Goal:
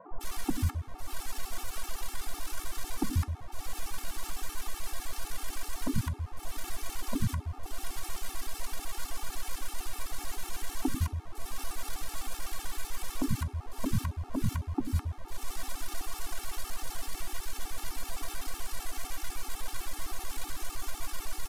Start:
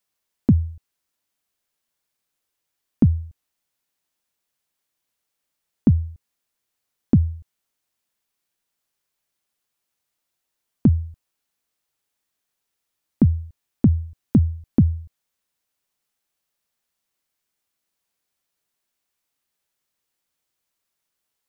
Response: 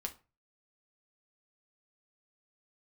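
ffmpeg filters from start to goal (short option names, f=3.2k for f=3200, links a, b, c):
-filter_complex "[0:a]aeval=exprs='val(0)+0.5*0.0211*sgn(val(0))':c=same,bandreject=f=700:w=12,aecho=1:1:2.6:0.39,acrusher=bits=7:dc=4:mix=0:aa=0.000001,acompressor=threshold=-35dB:ratio=8,asplit=2[a][b];[b]lowshelf=f=420:t=q:w=3:g=13[c];[1:a]atrim=start_sample=2205,asetrate=24696,aresample=44100[d];[c][d]afir=irnorm=-1:irlink=0,volume=-5.5dB[e];[a][e]amix=inputs=2:normalize=0,aresample=32000,aresample=44100,equalizer=f=125:t=o:w=1:g=-3,equalizer=f=250:t=o:w=1:g=-6,equalizer=f=500:t=o:w=1:g=7,equalizer=f=1k:t=o:w=1:g=12,acrossover=split=220|990[f][g][h];[f]adelay=90[i];[h]adelay=210[j];[i][g][j]amix=inputs=3:normalize=0,afftfilt=real='re*gt(sin(2*PI*7.9*pts/sr)*(1-2*mod(floor(b*sr/1024/230),2)),0)':imag='im*gt(sin(2*PI*7.9*pts/sr)*(1-2*mod(floor(b*sr/1024/230),2)),0)':win_size=1024:overlap=0.75"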